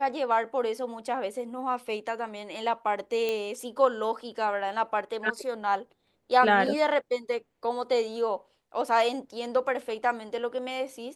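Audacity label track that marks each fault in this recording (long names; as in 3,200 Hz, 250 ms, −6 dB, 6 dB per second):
3.290000	3.290000	click −16 dBFS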